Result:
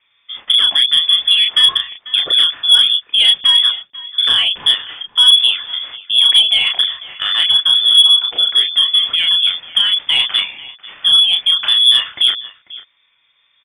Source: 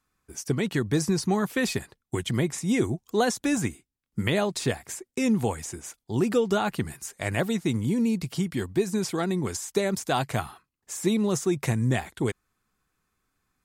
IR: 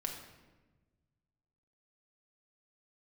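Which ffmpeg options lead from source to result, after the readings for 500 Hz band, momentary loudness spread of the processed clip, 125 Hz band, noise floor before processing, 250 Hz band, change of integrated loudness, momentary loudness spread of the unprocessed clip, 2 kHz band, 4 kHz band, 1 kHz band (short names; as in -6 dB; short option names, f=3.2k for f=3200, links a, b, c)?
under -15 dB, 10 LU, under -20 dB, -82 dBFS, under -20 dB, +16.5 dB, 10 LU, +10.5 dB, +32.0 dB, +1.0 dB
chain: -filter_complex "[0:a]asplit=2[a][b];[b]adelay=32,volume=-3.5dB[c];[a][c]amix=inputs=2:normalize=0,asplit=2[d][e];[e]acompressor=threshold=-32dB:ratio=12,volume=2.5dB[f];[d][f]amix=inputs=2:normalize=0,equalizer=f=250:t=o:w=0.27:g=10.5,aecho=1:1:493:0.0944,acrossover=split=1000[g][h];[h]asoftclip=type=tanh:threshold=-25.5dB[i];[g][i]amix=inputs=2:normalize=0,lowpass=f=3.1k:t=q:w=0.5098,lowpass=f=3.1k:t=q:w=0.6013,lowpass=f=3.1k:t=q:w=0.9,lowpass=f=3.1k:t=q:w=2.563,afreqshift=-3600,acontrast=90"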